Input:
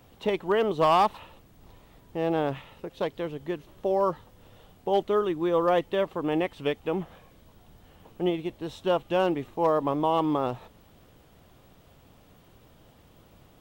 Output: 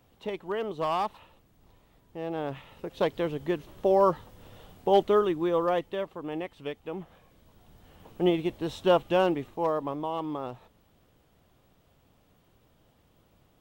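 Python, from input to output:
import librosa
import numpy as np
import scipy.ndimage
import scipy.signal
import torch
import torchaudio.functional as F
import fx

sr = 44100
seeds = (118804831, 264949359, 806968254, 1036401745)

y = fx.gain(x, sr, db=fx.line((2.32, -7.5), (3.03, 3.0), (5.05, 3.0), (6.18, -8.0), (6.93, -8.0), (8.36, 3.0), (8.96, 3.0), (10.09, -8.0)))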